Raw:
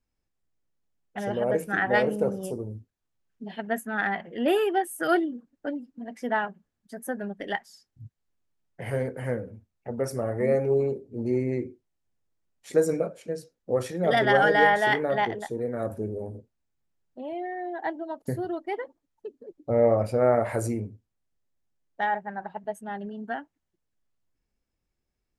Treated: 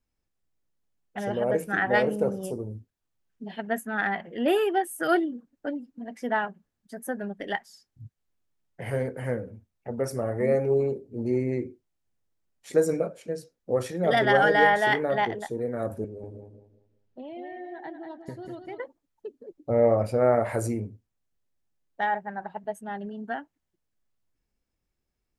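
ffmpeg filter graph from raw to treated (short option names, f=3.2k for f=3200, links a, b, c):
-filter_complex "[0:a]asettb=1/sr,asplit=3[a][b][c];[a]atrim=end=16.044[d];[b]atrim=start=16.04:end=18.8,asetpts=PTS-STARTPTS,afade=t=in:d=0.004:c=qsin,afade=t=out:st=2.756:d=0.004:c=qsin,lowpass=5.3k,acrossover=split=290|2400[e][f][g];[e]acompressor=threshold=-42dB:ratio=4[h];[f]acompressor=threshold=-42dB:ratio=4[i];[g]acompressor=threshold=-56dB:ratio=4[j];[h][i][j]amix=inputs=3:normalize=0,aecho=1:1:192|384|576|768:0.473|0.142|0.0426|0.0128,atrim=end_sample=121716[k];[c]atrim=start=18.796[l];[d][k]acrossfade=d=0.004:c1=hsin:c2=qsin[m];[m][l]acrossfade=d=0.004:c1=qsin:c2=hsin"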